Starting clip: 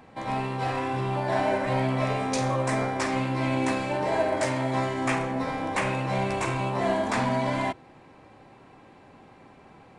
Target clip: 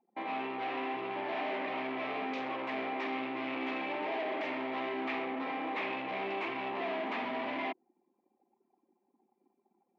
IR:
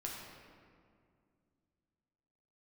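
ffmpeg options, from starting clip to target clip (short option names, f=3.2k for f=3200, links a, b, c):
-af "anlmdn=0.631,asoftclip=type=hard:threshold=-30.5dB,highpass=f=270:w=0.5412,highpass=f=270:w=1.3066,equalizer=f=540:t=q:w=4:g=-8,equalizer=f=1k:t=q:w=4:g=-3,equalizer=f=1.5k:t=q:w=4:g=-9,equalizer=f=2.3k:t=q:w=4:g=3,lowpass=f=3.1k:w=0.5412,lowpass=f=3.1k:w=1.3066"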